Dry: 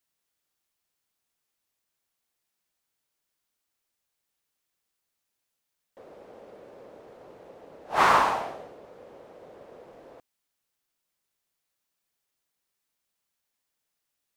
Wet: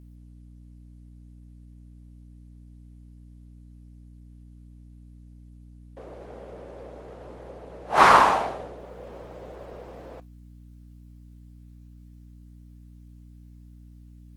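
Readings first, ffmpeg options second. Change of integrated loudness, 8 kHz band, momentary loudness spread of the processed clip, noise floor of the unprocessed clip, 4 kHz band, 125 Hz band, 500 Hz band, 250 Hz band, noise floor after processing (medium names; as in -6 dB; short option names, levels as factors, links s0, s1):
+4.5 dB, +4.0 dB, 19 LU, -82 dBFS, +4.0 dB, +10.5 dB, +5.5 dB, +6.5 dB, -48 dBFS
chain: -af "aeval=exprs='val(0)+0.00251*(sin(2*PI*60*n/s)+sin(2*PI*2*60*n/s)/2+sin(2*PI*3*60*n/s)/3+sin(2*PI*4*60*n/s)/4+sin(2*PI*5*60*n/s)/5)':c=same,volume=2" -ar 48000 -c:a libopus -b:a 20k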